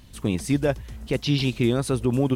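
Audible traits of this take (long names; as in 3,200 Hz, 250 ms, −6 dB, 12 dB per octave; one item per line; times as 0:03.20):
background noise floor −46 dBFS
spectral slope −6.0 dB per octave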